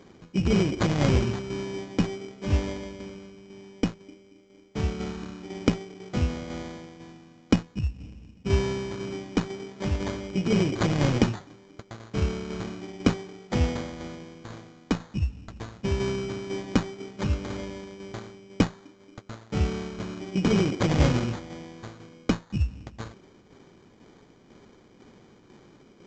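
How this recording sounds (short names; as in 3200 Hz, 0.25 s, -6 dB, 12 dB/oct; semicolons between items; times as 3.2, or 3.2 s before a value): a buzz of ramps at a fixed pitch in blocks of 8 samples; tremolo saw down 2 Hz, depth 50%; aliases and images of a low sample rate 2700 Hz, jitter 0%; µ-law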